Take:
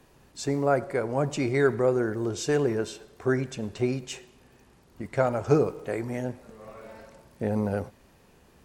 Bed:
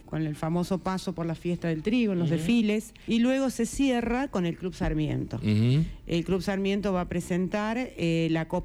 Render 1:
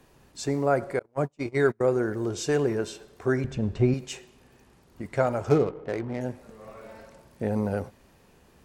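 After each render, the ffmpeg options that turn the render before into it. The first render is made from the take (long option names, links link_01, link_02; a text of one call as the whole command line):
ffmpeg -i in.wav -filter_complex "[0:a]asettb=1/sr,asplit=3[link_01][link_02][link_03];[link_01]atrim=end=0.994[link_04];[link_02]atrim=start=0.99:end=1.81,asetpts=PTS-STARTPTS,afade=type=in:duration=0.004:curve=qsin,afade=type=out:start_time=0.816:duration=0.004:curve=qsin,agate=range=-36dB:threshold=-26dB:ratio=16:release=100:detection=peak[link_05];[link_03]atrim=start=1.806[link_06];[link_04][link_05]acrossfade=duration=0.004:curve1=hsin:curve2=qsin[link_07];[link_07][link_06]acrossfade=duration=0.004:curve1=qsin:curve2=hsin,asettb=1/sr,asplit=3[link_08][link_09][link_10];[link_08]atrim=end=3.444[link_11];[link_09]atrim=start=3.44:end=3.94,asetpts=PTS-STARTPTS,afade=type=in:duration=0.004:curve=qsin,afade=type=out:start_time=0.496:duration=0.004:curve=qsin,aemphasis=mode=reproduction:type=bsi[link_12];[link_10]atrim=start=3.936[link_13];[link_11][link_12]acrossfade=duration=0.004:curve1=hsin:curve2=qsin[link_14];[link_14][link_13]acrossfade=duration=0.004:curve1=qsin:curve2=hsin,asettb=1/sr,asplit=3[link_15][link_16][link_17];[link_15]atrim=end=5.494[link_18];[link_16]atrim=start=5.49:end=6.21,asetpts=PTS-STARTPTS,afade=type=in:duration=0.004:curve=qsin,afade=type=out:start_time=0.716:duration=0.004:curve=qsin,adynamicsmooth=sensitivity=7:basefreq=760[link_19];[link_17]atrim=start=6.206[link_20];[link_18][link_19]acrossfade=duration=0.004:curve1=hsin:curve2=qsin[link_21];[link_21][link_20]acrossfade=duration=0.004:curve1=qsin:curve2=hsin" out.wav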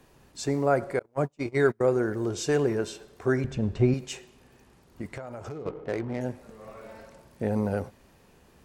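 ffmpeg -i in.wav -filter_complex "[0:a]asplit=3[link_01][link_02][link_03];[link_01]afade=type=out:start_time=5.11:duration=0.02[link_04];[link_02]acompressor=threshold=-34dB:ratio=12:attack=3.2:release=140:knee=1:detection=peak,afade=type=in:start_time=5.11:duration=0.02,afade=type=out:start_time=5.65:duration=0.02[link_05];[link_03]afade=type=in:start_time=5.65:duration=0.02[link_06];[link_04][link_05][link_06]amix=inputs=3:normalize=0" out.wav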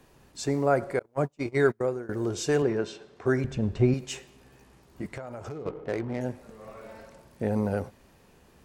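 ffmpeg -i in.wav -filter_complex "[0:a]asettb=1/sr,asplit=3[link_01][link_02][link_03];[link_01]atrim=end=2.624[link_04];[link_02]atrim=start=2.62:end=3.26,asetpts=PTS-STARTPTS,afade=type=in:duration=0.004:curve=qsin,afade=type=out:start_time=0.636:duration=0.004:curve=qsin,highpass=100,lowpass=5000[link_05];[link_03]atrim=start=3.256[link_06];[link_04][link_05]acrossfade=duration=0.004:curve1=hsin:curve2=qsin[link_07];[link_07][link_06]acrossfade=duration=0.004:curve1=qsin:curve2=hsin,asettb=1/sr,asplit=3[link_08][link_09][link_10];[link_08]atrim=end=4.064[link_11];[link_09]atrim=start=4.06:end=5.06,asetpts=PTS-STARTPTS,afade=type=in:duration=0.004:curve=qsin,afade=type=out:start_time=0.996:duration=0.004:curve=qsin,asplit=2[link_12][link_13];[link_13]adelay=15,volume=-5dB[link_14];[link_12][link_14]amix=inputs=2:normalize=0,atrim=end_sample=44100[link_15];[link_10]atrim=start=5.056[link_16];[link_11][link_15]acrossfade=duration=0.004:curve1=hsin:curve2=qsin[link_17];[link_17][link_16]acrossfade=duration=0.004:curve1=qsin:curve2=hsin,asplit=2[link_18][link_19];[link_18]atrim=end=2.09,asetpts=PTS-STARTPTS,afade=type=out:start_time=1.68:duration=0.41:silence=0.0944061[link_20];[link_19]atrim=start=2.09,asetpts=PTS-STARTPTS,afade=type=in:duration=0.004:curve=hsin:silence=0.0944061[link_21];[link_20][link_21]concat=n=2:v=0:a=1" out.wav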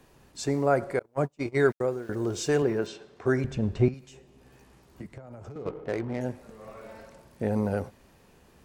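ffmpeg -i in.wav -filter_complex "[0:a]asettb=1/sr,asplit=3[link_01][link_02][link_03];[link_01]atrim=end=1.564[link_04];[link_02]atrim=start=1.56:end=2.87,asetpts=PTS-STARTPTS,afade=type=in:duration=0.004:curve=qsin,afade=type=out:start_time=1.306:duration=0.004:curve=qsin,aeval=exprs='val(0)*gte(abs(val(0)),0.00316)':channel_layout=same[link_05];[link_03]atrim=start=2.866[link_06];[link_04][link_05]acrossfade=duration=0.004:curve1=hsin:curve2=qsin[link_07];[link_07][link_06]acrossfade=duration=0.004:curve1=qsin:curve2=hsin,asettb=1/sr,asplit=3[link_08][link_09][link_10];[link_08]atrim=end=3.884[link_11];[link_09]atrim=start=3.88:end=5.56,asetpts=PTS-STARTPTS,afade=type=in:duration=0.004:curve=qsin,afade=type=out:start_time=1.676:duration=0.004:curve=qsin,acrossover=split=240|800[link_12][link_13][link_14];[link_12]acompressor=threshold=-40dB:ratio=4[link_15];[link_13]acompressor=threshold=-48dB:ratio=4[link_16];[link_14]acompressor=threshold=-56dB:ratio=4[link_17];[link_15][link_16][link_17]amix=inputs=3:normalize=0[link_18];[link_10]atrim=start=5.556[link_19];[link_11][link_18]acrossfade=duration=0.004:curve1=hsin:curve2=qsin[link_20];[link_20][link_19]acrossfade=duration=0.004:curve1=qsin:curve2=hsin" out.wav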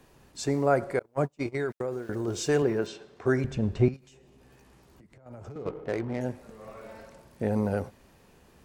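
ffmpeg -i in.wav -filter_complex "[0:a]asettb=1/sr,asplit=3[link_01][link_02][link_03];[link_01]atrim=end=1.464[link_04];[link_02]atrim=start=1.46:end=2.28,asetpts=PTS-STARTPTS,afade=type=in:duration=0.004:curve=qsin,afade=type=out:start_time=0.816:duration=0.004:curve=qsin,acompressor=threshold=-26dB:ratio=6:attack=3.2:release=140:knee=1:detection=peak[link_05];[link_03]atrim=start=2.276[link_06];[link_04][link_05]acrossfade=duration=0.004:curve1=hsin:curve2=qsin[link_07];[link_07][link_06]acrossfade=duration=0.004:curve1=qsin:curve2=hsin,asettb=1/sr,asplit=3[link_08][link_09][link_10];[link_08]atrim=end=3.964[link_11];[link_09]atrim=start=3.96:end=5.26,asetpts=PTS-STARTPTS,afade=type=in:duration=0.004:curve=qsin,afade=type=out:start_time=1.296:duration=0.004:curve=qsin,acompressor=threshold=-52dB:ratio=6:attack=3.2:release=140:knee=1:detection=peak[link_12];[link_10]atrim=start=5.256[link_13];[link_11][link_12]acrossfade=duration=0.004:curve1=hsin:curve2=qsin[link_14];[link_14][link_13]acrossfade=duration=0.004:curve1=qsin:curve2=hsin" out.wav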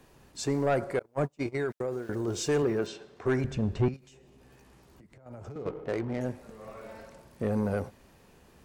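ffmpeg -i in.wav -af "asoftclip=type=tanh:threshold=-19dB" out.wav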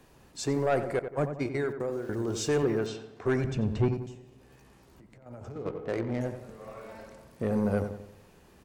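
ffmpeg -i in.wav -filter_complex "[0:a]asplit=2[link_01][link_02];[link_02]adelay=90,lowpass=frequency=1700:poles=1,volume=-8dB,asplit=2[link_03][link_04];[link_04]adelay=90,lowpass=frequency=1700:poles=1,volume=0.48,asplit=2[link_05][link_06];[link_06]adelay=90,lowpass=frequency=1700:poles=1,volume=0.48,asplit=2[link_07][link_08];[link_08]adelay=90,lowpass=frequency=1700:poles=1,volume=0.48,asplit=2[link_09][link_10];[link_10]adelay=90,lowpass=frequency=1700:poles=1,volume=0.48,asplit=2[link_11][link_12];[link_12]adelay=90,lowpass=frequency=1700:poles=1,volume=0.48[link_13];[link_01][link_03][link_05][link_07][link_09][link_11][link_13]amix=inputs=7:normalize=0" out.wav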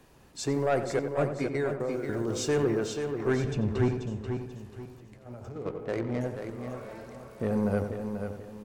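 ffmpeg -i in.wav -af "aecho=1:1:486|972|1458|1944:0.447|0.147|0.0486|0.0161" out.wav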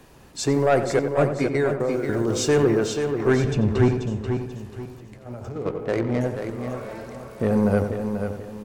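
ffmpeg -i in.wav -af "volume=7.5dB" out.wav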